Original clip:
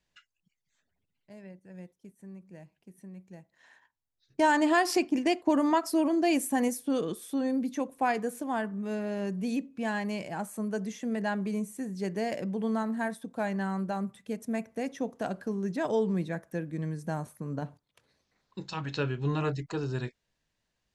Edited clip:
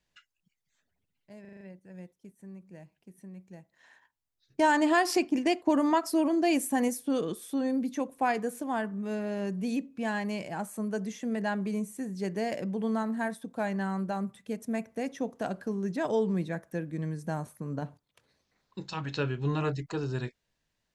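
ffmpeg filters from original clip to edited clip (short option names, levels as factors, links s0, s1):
-filter_complex "[0:a]asplit=6[s0][s1][s2][s3][s4][s5];[s0]atrim=end=1.452[s6];[s1]atrim=start=1.408:end=1.452[s7];[s2]atrim=start=1.408:end=1.452[s8];[s3]atrim=start=1.408:end=1.452[s9];[s4]atrim=start=1.408:end=1.452[s10];[s5]atrim=start=1.408[s11];[s6][s7]acrossfade=d=0.004:c1=hsin:c2=hsin[s12];[s12][s8]acrossfade=d=0.004:c1=hsin:c2=hsin[s13];[s13][s9]acrossfade=d=0.004:c1=hsin:c2=hsin[s14];[s14][s10]acrossfade=d=0.004:c1=hsin:c2=hsin[s15];[s15][s11]acrossfade=d=0.004:c1=hsin:c2=hsin"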